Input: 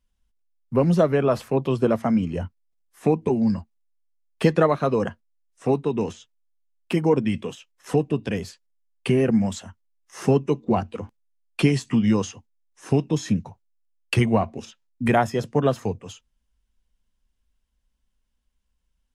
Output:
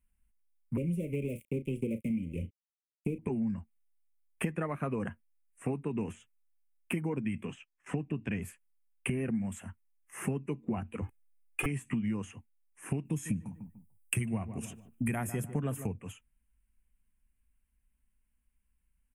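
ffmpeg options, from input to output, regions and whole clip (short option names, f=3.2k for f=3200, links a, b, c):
-filter_complex "[0:a]asettb=1/sr,asplit=3[a][b][c];[a]atrim=end=0.774[d];[b]atrim=start=0.77:end=3.19,asetpts=PTS-STARTPTS,afade=t=in:d=0.004:c=qsin,afade=t=out:st=2.416:d=0.004:c=qsin,aeval=exprs='sgn(val(0))*max(abs(val(0))-0.02,0)':c=same,asuperstop=centerf=1100:order=20:qfactor=0.7,asplit=2[e][f];[f]adelay=35,volume=-12.5dB[g];[e][g]amix=inputs=2:normalize=0,atrim=end_sample=106722[h];[c]atrim=start=3.186[i];[d][h]acrossfade=d=0.004:c1=hsin:c2=qsin[j];[j][i]acrossfade=d=0.004:c1=qsin:c2=hsin,asettb=1/sr,asplit=3[k][l][m];[k]atrim=end=7.454[n];[l]atrim=start=7.45:end=8.42,asetpts=PTS-STARTPTS,afade=t=in:d=0.004:c=qsin,afade=t=out:st=0.966:d=0.004:c=qsin,lowpass=f=6.8k:w=0.5412,lowpass=f=6.8k:w=1.3066,agate=range=-11dB:threshold=-52dB:ratio=16:release=100:detection=peak,equalizer=f=490:w=3.9:g=-4[o];[m]atrim=start=8.416[p];[n][o]acrossfade=d=0.004:c1=hsin:c2=qsin[q];[q][p]acrossfade=d=0.004:c1=qsin:c2=hsin,asettb=1/sr,asplit=3[r][s][t];[r]atrim=end=11.024[u];[s]atrim=start=11.02:end=11.66,asetpts=PTS-STARTPTS,afade=t=in:d=0.004:c=qsin,afade=t=out:st=0.636:d=0.004:c=qsin,aeval=exprs='0.119*(abs(mod(val(0)/0.119+3,4)-2)-1)':c=same,aecho=1:1:2.4:0.96,atrim=end_sample=28224[v];[t]atrim=start=11.656[w];[u][v]acrossfade=d=0.004:c1=hsin:c2=qsin[x];[x][w]acrossfade=d=0.004:c1=qsin:c2=hsin,asettb=1/sr,asplit=3[y][z][aa];[y]atrim=end=13.054[ab];[z]atrim=start=13.05:end=15.87,asetpts=PTS-STARTPTS,afade=t=in:d=0.004:c=qsin,afade=t=out:st=2.816:d=0.004:c=qsin,bass=f=250:g=5,treble=f=4k:g=12,asplit=2[ac][ad];[ad]adelay=148,lowpass=f=1.4k:p=1,volume=-16dB,asplit=2[ae][af];[af]adelay=148,lowpass=f=1.4k:p=1,volume=0.34,asplit=2[ag][ah];[ah]adelay=148,lowpass=f=1.4k:p=1,volume=0.34[ai];[ac][ae][ag][ai]amix=inputs=4:normalize=0,atrim=end_sample=124362[aj];[aa]atrim=start=15.866[ak];[ab][aj]acrossfade=d=0.004:c1=hsin:c2=qsin[al];[al][ak]acrossfade=d=0.004:c1=qsin:c2=hsin,firequalizer=gain_entry='entry(220,0);entry(490,-8);entry(2400,3);entry(4200,-28);entry(8700,5)':delay=0.05:min_phase=1,acompressor=threshold=-28dB:ratio=6,volume=-2dB"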